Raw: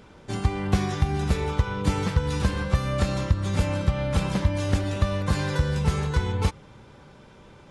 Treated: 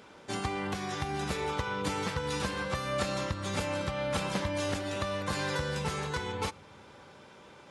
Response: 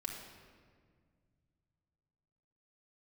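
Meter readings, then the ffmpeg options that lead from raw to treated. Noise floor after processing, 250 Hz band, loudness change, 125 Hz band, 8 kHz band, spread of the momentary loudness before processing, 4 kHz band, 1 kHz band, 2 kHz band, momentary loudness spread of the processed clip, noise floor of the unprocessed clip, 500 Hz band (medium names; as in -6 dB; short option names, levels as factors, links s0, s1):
-54 dBFS, -8.5 dB, -7.5 dB, -13.5 dB, -1.5 dB, 2 LU, -1.0 dB, -2.0 dB, -1.5 dB, 20 LU, -50 dBFS, -3.0 dB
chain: -filter_complex "[0:a]highpass=f=440:p=1,alimiter=limit=0.1:level=0:latency=1:release=350,asplit=2[s0][s1];[1:a]atrim=start_sample=2205[s2];[s1][s2]afir=irnorm=-1:irlink=0,volume=0.126[s3];[s0][s3]amix=inputs=2:normalize=0"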